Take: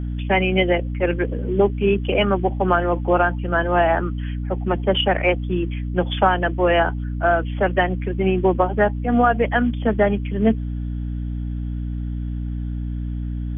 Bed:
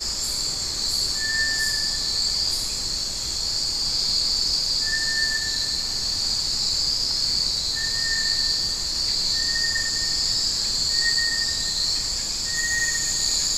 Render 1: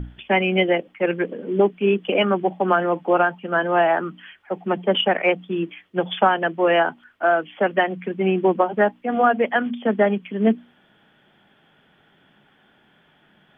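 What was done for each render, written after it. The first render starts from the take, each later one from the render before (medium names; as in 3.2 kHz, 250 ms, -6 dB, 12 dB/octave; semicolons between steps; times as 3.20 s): hum notches 60/120/180/240/300 Hz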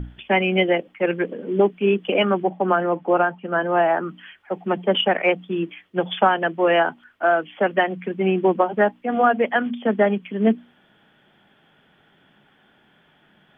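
2.43–4.09 s: low-pass 2 kHz 6 dB/octave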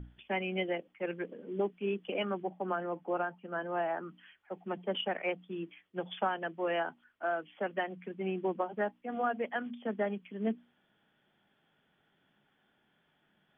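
trim -15 dB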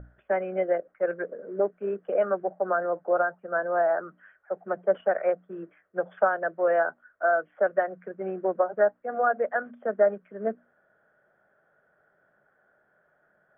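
FFT filter 120 Hz 0 dB, 270 Hz -5 dB, 610 Hz +15 dB, 880 Hz 0 dB, 1.5 kHz +12 dB, 2.8 kHz -19 dB, 4.3 kHz -24 dB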